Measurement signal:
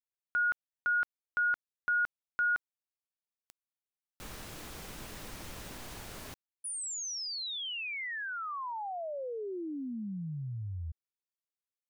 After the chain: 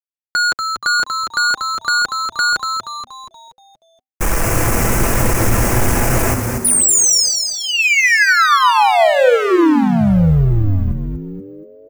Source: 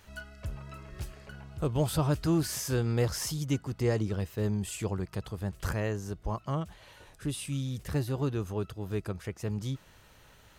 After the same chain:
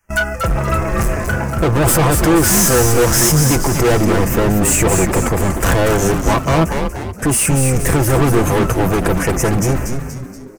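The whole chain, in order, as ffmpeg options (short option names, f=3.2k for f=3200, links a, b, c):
-filter_complex "[0:a]apsyclip=32dB,acrossover=split=110[a][b];[a]dynaudnorm=f=570:g=7:m=8.5dB[c];[b]highpass=f=260:p=1[d];[c][d]amix=inputs=2:normalize=0,acrusher=bits=6:mix=0:aa=0.5,agate=range=-34dB:threshold=-16dB:ratio=16:release=187:detection=rms,adynamicequalizer=threshold=0.0794:dfrequency=450:dqfactor=0.98:tfrequency=450:tqfactor=0.98:attack=5:release=100:ratio=0.45:range=2.5:mode=boostabove:tftype=bell,asuperstop=centerf=3800:order=4:qfactor=1.1,asoftclip=type=hard:threshold=-9dB,aecho=1:1:6:0.38,asplit=2[e][f];[f]asplit=6[g][h][i][j][k][l];[g]adelay=238,afreqshift=-130,volume=-5.5dB[m];[h]adelay=476,afreqshift=-260,volume=-12.2dB[n];[i]adelay=714,afreqshift=-390,volume=-19dB[o];[j]adelay=952,afreqshift=-520,volume=-25.7dB[p];[k]adelay=1190,afreqshift=-650,volume=-32.5dB[q];[l]adelay=1428,afreqshift=-780,volume=-39.2dB[r];[m][n][o][p][q][r]amix=inputs=6:normalize=0[s];[e][s]amix=inputs=2:normalize=0,volume=-3.5dB"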